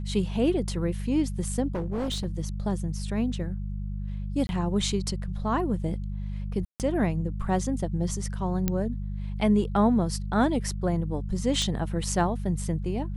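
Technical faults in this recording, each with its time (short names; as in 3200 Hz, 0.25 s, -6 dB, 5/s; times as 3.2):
hum 50 Hz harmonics 4 -32 dBFS
1.75–2.26 clipped -25.5 dBFS
4.47–4.49 gap 21 ms
6.65–6.8 gap 0.148 s
8.68 pop -11 dBFS
11.62 pop -17 dBFS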